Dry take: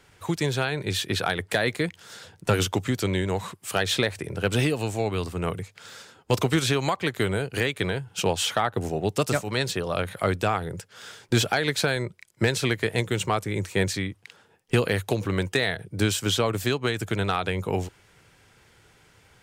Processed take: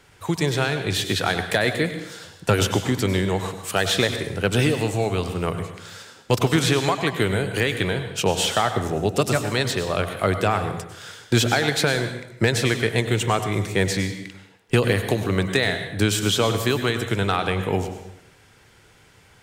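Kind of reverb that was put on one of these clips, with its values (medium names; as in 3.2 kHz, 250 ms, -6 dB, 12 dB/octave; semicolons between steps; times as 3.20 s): plate-style reverb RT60 0.77 s, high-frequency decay 0.9×, pre-delay 85 ms, DRR 8 dB; trim +3 dB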